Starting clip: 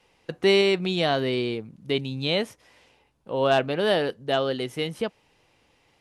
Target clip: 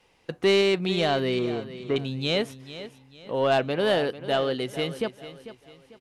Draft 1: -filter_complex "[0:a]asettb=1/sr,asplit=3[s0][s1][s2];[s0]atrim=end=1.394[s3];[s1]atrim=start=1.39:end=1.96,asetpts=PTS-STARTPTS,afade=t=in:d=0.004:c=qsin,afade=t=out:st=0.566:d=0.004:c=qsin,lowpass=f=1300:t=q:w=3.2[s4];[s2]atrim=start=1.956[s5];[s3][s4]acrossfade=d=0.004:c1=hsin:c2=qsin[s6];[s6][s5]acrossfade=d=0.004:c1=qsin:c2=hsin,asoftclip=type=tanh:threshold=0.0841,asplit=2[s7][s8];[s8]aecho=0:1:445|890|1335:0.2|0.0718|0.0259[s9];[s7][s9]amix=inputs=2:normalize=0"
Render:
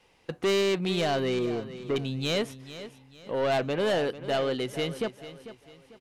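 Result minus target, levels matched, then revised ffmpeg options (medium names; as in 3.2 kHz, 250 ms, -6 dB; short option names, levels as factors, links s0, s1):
saturation: distortion +11 dB
-filter_complex "[0:a]asettb=1/sr,asplit=3[s0][s1][s2];[s0]atrim=end=1.394[s3];[s1]atrim=start=1.39:end=1.96,asetpts=PTS-STARTPTS,afade=t=in:d=0.004:c=qsin,afade=t=out:st=0.566:d=0.004:c=qsin,lowpass=f=1300:t=q:w=3.2[s4];[s2]atrim=start=1.956[s5];[s3][s4]acrossfade=d=0.004:c1=hsin:c2=qsin[s6];[s6][s5]acrossfade=d=0.004:c1=qsin:c2=hsin,asoftclip=type=tanh:threshold=0.251,asplit=2[s7][s8];[s8]aecho=0:1:445|890|1335:0.2|0.0718|0.0259[s9];[s7][s9]amix=inputs=2:normalize=0"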